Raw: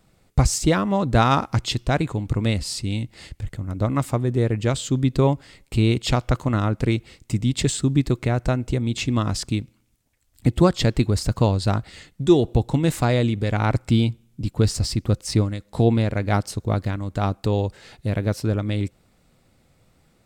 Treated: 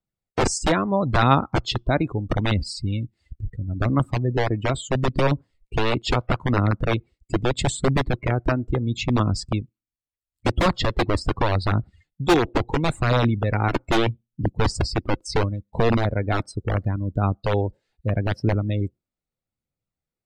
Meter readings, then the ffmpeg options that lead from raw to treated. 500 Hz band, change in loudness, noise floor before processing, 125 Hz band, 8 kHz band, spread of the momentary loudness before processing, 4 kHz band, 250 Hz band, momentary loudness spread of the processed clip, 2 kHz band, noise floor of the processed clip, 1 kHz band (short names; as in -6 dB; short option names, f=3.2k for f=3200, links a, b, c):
0.0 dB, -1.0 dB, -62 dBFS, -2.0 dB, -4.0 dB, 9 LU, -0.5 dB, -2.5 dB, 8 LU, +3.5 dB, under -85 dBFS, +2.0 dB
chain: -filter_complex "[0:a]acrossover=split=360|2400[a][b][c];[a]aeval=exprs='(mod(5.31*val(0)+1,2)-1)/5.31':c=same[d];[d][b][c]amix=inputs=3:normalize=0,aphaser=in_gain=1:out_gain=1:delay=3.5:decay=0.28:speed=0.76:type=triangular,afftdn=nr=31:nf=-30,adynamicequalizer=threshold=0.00355:dfrequency=6500:dqfactor=2.1:tfrequency=6500:tqfactor=2.1:attack=5:release=100:ratio=0.375:range=3.5:mode=cutabove:tftype=bell"